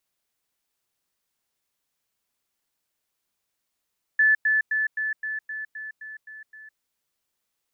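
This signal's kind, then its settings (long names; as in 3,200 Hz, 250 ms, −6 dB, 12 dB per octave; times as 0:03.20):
level staircase 1,740 Hz −15 dBFS, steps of −3 dB, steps 10, 0.16 s 0.10 s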